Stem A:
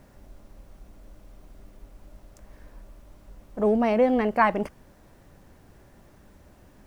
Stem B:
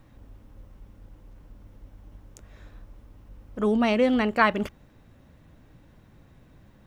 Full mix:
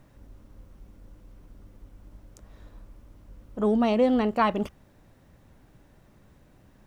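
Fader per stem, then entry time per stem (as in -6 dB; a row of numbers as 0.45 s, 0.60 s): -7.0 dB, -4.5 dB; 0.00 s, 0.00 s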